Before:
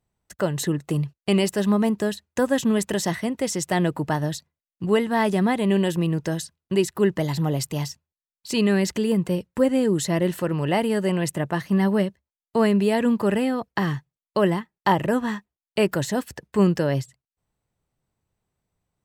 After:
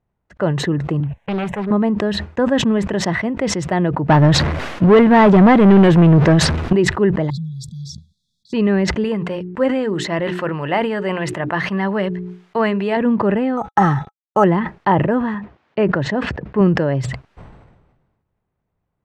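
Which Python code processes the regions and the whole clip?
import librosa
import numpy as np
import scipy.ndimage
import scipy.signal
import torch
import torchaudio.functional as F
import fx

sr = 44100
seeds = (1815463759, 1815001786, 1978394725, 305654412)

y = fx.chain(x, sr, fx.fixed_phaser(hz=1300.0, stages=6),
    fx.doppler_dist(depth_ms=0.93), at=(1.0, 1.71))
y = fx.chain(y, sr, fx.zero_step(step_db=-35.5),
    fx.leveller(passes=3), at=(4.09, 6.73))
y = fx.chain(y, sr, fx.brickwall_bandstop(low_hz=230.0, high_hz=3300.0),
    fx.low_shelf(hz=180.0, db=-12.0), at=(7.3, 8.53))
y = fx.chain(y, sr, fx.tilt_shelf(db=-6.5, hz=660.0),
    fx.hum_notches(base_hz=60, count=7), at=(9.04, 12.97))
y = fx.chain(y, sr, fx.law_mismatch(coded='A'),
    fx.small_body(hz=(830.0, 1300.0, 3500.0), ring_ms=50, db=18),
    fx.resample_bad(factor=6, down='filtered', up='hold'), at=(13.57, 14.44))
y = fx.chain(y, sr, fx.highpass(hz=85.0, slope=12),
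    fx.air_absorb(metres=110.0), at=(15.34, 16.61))
y = scipy.signal.sosfilt(scipy.signal.butter(2, 1900.0, 'lowpass', fs=sr, output='sos'), y)
y = fx.sustainer(y, sr, db_per_s=43.0)
y = y * librosa.db_to_amplitude(4.0)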